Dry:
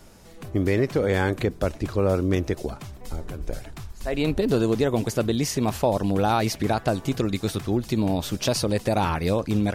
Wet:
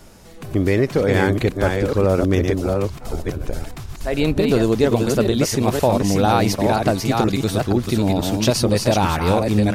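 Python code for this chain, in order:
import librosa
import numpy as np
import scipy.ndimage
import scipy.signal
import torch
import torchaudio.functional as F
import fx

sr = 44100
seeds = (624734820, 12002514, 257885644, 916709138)

y = fx.reverse_delay(x, sr, ms=483, wet_db=-4)
y = F.gain(torch.from_numpy(y), 4.5).numpy()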